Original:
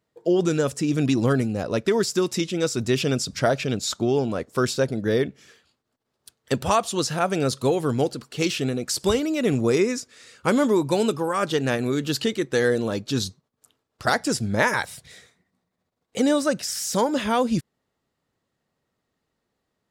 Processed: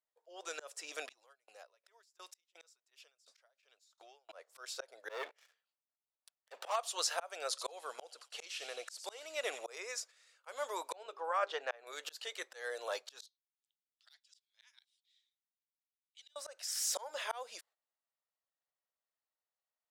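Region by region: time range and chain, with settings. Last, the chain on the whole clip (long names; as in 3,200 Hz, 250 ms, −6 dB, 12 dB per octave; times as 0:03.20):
0:01.12–0:04.29: parametric band 430 Hz −5.5 dB 2.6 octaves + downward compressor 12 to 1, threshold −29 dBFS + tremolo with a ramp in dB decaying 2.8 Hz, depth 20 dB
0:05.09–0:06.76: high-shelf EQ 5,900 Hz −10.5 dB + leveller curve on the samples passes 3
0:07.48–0:09.65: low-pass filter 12,000 Hz 24 dB per octave + delay with a high-pass on its return 90 ms, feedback 45%, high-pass 2,400 Hz, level −11 dB
0:10.92–0:11.87: head-to-tape spacing loss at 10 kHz 23 dB + mains-hum notches 50/100/150/200/250/300/350/400 Hz
0:13.26–0:16.36: one scale factor per block 7 bits + four-pole ladder band-pass 3,800 Hz, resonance 60% + hard clipping −28.5 dBFS
whole clip: noise gate −41 dBFS, range −13 dB; Butterworth high-pass 560 Hz 36 dB per octave; volume swells 397 ms; level −5.5 dB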